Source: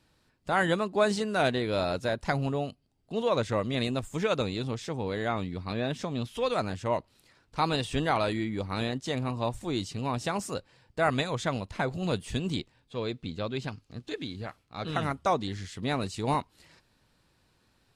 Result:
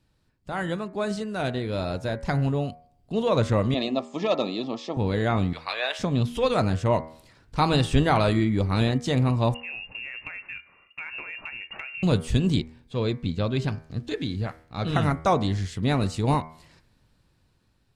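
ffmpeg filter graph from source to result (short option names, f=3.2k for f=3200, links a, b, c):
-filter_complex "[0:a]asettb=1/sr,asplit=3[a][b][c];[a]atrim=end=3.744[d];[b]atrim=start=3.74:end=4.97,asetpts=PTS-STARTPTS,afade=t=in:d=0.004:c=qsin,afade=t=out:st=1.226:d=0.004:c=qsin,aeval=exprs='clip(val(0),-1,0.0708)':c=same,asuperstop=centerf=1500:order=20:qfactor=4.9,highpass=f=240:w=0.5412,highpass=f=240:w=1.3066,equalizer=f=450:t=q:w=4:g=-6,equalizer=f=680:t=q:w=4:g=7,equalizer=f=2k:t=q:w=4:g=-9,lowpass=f=5.5k:w=0.5412,lowpass=f=5.5k:w=1.3066[e];[c]atrim=start=4.966[f];[d][e]acrossfade=d=0.004:c1=hsin:c2=qsin[g];[g][f]acrossfade=d=0.004:c1=qsin:c2=hsin,asettb=1/sr,asplit=3[h][i][j];[h]atrim=end=5.534[k];[i]atrim=start=5.53:end=5.99,asetpts=PTS-STARTPTS,afade=t=in:d=0.004:c=qsin,afade=t=out:st=0.456:d=0.004:c=qsin,highpass=f=610:w=0.5412,highpass=f=610:w=1.3066,equalizer=f=2.4k:t=o:w=2.1:g=8[l];[j]atrim=start=5.986[m];[k][l]acrossfade=d=0.004:c1=hsin:c2=qsin[n];[n][m]acrossfade=d=0.004:c1=qsin:c2=hsin,asettb=1/sr,asplit=3[o][p][q];[o]atrim=end=9.544[r];[p]atrim=start=9.54:end=12.03,asetpts=PTS-STARTPTS,afade=t=in:d=0.004:c=qsin,afade=t=out:st=2.486:d=0.004:c=qsin,highpass=49,lowpass=f=2.5k:t=q:w=0.5098,lowpass=f=2.5k:t=q:w=0.6013,lowpass=f=2.5k:t=q:w=0.9,lowpass=f=2.5k:t=q:w=2.563,afreqshift=-2900,acompressor=threshold=-36dB:ratio=10:attack=3.2:release=140:knee=1:detection=peak[s];[q]atrim=start=12.026[t];[r][s]acrossfade=d=0.004:c1=hsin:c2=qsin[u];[u][t]acrossfade=d=0.004:c1=qsin:c2=hsin,lowshelf=f=220:g=10,bandreject=f=79.72:t=h:w=4,bandreject=f=159.44:t=h:w=4,bandreject=f=239.16:t=h:w=4,bandreject=f=318.88:t=h:w=4,bandreject=f=398.6:t=h:w=4,bandreject=f=478.32:t=h:w=4,bandreject=f=558.04:t=h:w=4,bandreject=f=637.76:t=h:w=4,bandreject=f=717.48:t=h:w=4,bandreject=f=797.2:t=h:w=4,bandreject=f=876.92:t=h:w=4,bandreject=f=956.64:t=h:w=4,bandreject=f=1.03636k:t=h:w=4,bandreject=f=1.11608k:t=h:w=4,bandreject=f=1.1958k:t=h:w=4,bandreject=f=1.27552k:t=h:w=4,bandreject=f=1.35524k:t=h:w=4,bandreject=f=1.43496k:t=h:w=4,bandreject=f=1.51468k:t=h:w=4,bandreject=f=1.5944k:t=h:w=4,bandreject=f=1.67412k:t=h:w=4,bandreject=f=1.75384k:t=h:w=4,bandreject=f=1.83356k:t=h:w=4,bandreject=f=1.91328k:t=h:w=4,bandreject=f=1.993k:t=h:w=4,bandreject=f=2.07272k:t=h:w=4,bandreject=f=2.15244k:t=h:w=4,bandreject=f=2.23216k:t=h:w=4,bandreject=f=2.31188k:t=h:w=4,bandreject=f=2.3916k:t=h:w=4,dynaudnorm=f=680:g=7:m=11.5dB,volume=-5.5dB"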